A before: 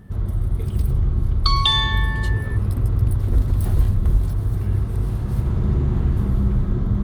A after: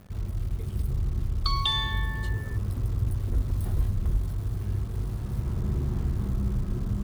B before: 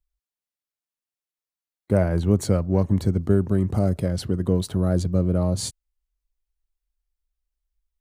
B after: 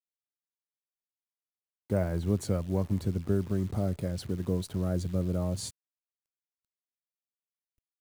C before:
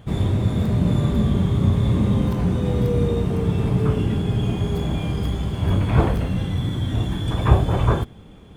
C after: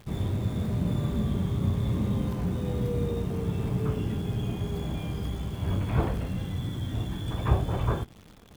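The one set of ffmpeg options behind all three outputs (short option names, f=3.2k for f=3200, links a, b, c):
-af "acrusher=bits=8:dc=4:mix=0:aa=0.000001,volume=-8.5dB"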